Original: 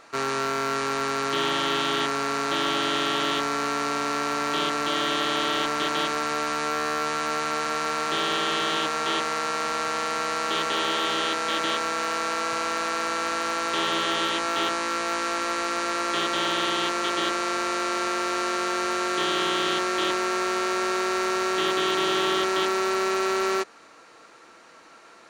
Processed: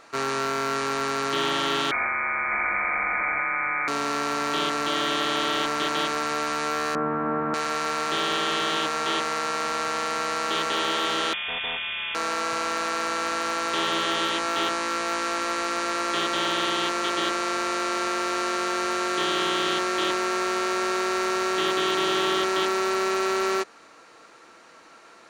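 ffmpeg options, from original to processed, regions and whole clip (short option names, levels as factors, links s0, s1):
-filter_complex "[0:a]asettb=1/sr,asplit=3[s0][s1][s2];[s0]atrim=end=1.914[s3];[s1]atrim=start=1.91:end=3.88,asetpts=PTS-STARTPTS,afade=t=in:d=0.004:c=qsin,afade=t=out:st=1.966:d=0.004:c=qsin,highpass=f=160:t=q:w=1.6,lowpass=f=2200:t=q:w=0.5098,lowpass=f=2200:t=q:w=0.6013,lowpass=f=2200:t=q:w=0.9,lowpass=f=2200:t=q:w=2.563,afreqshift=-2600[s4];[s2]atrim=start=3.876[s5];[s3][s4]acrossfade=d=0.004:c1=hsin:c2=qsin[s6];[s6][s5]acrossfade=d=0.004:c1=qsin:c2=hsin,asettb=1/sr,asplit=3[s7][s8][s9];[s7]atrim=end=6.954[s10];[s8]atrim=start=6.95:end=7.54,asetpts=PTS-STARTPTS,afade=t=in:d=0.004:c=qsin,afade=t=out:st=0.586:d=0.004:c=qsin,lowpass=f=1500:w=0.5412,lowpass=f=1500:w=1.3066,equalizer=f=200:w=0.8:g=11.5[s11];[s9]atrim=start=7.536[s12];[s10][s11]acrossfade=d=0.004:c1=hsin:c2=qsin[s13];[s13][s12]acrossfade=d=0.004:c1=qsin:c2=hsin,asettb=1/sr,asplit=3[s14][s15][s16];[s14]atrim=end=11.334[s17];[s15]atrim=start=11.33:end=12.15,asetpts=PTS-STARTPTS,afade=t=in:d=0.004:c=qsin,afade=t=out:st=0.816:d=0.004:c=qsin,acrossover=split=400|3000[s18][s19][s20];[s19]acompressor=threshold=0.0316:ratio=2.5:attack=3.2:release=140:knee=2.83:detection=peak[s21];[s18][s21][s20]amix=inputs=3:normalize=0,lowpass=f=3200:t=q:w=0.5098,lowpass=f=3200:t=q:w=0.6013,lowpass=f=3200:t=q:w=0.9,lowpass=f=3200:t=q:w=2.563,afreqshift=-3800[s22];[s16]atrim=start=12.146[s23];[s17][s22]acrossfade=d=0.004:c1=hsin:c2=qsin[s24];[s24][s23]acrossfade=d=0.004:c1=qsin:c2=hsin"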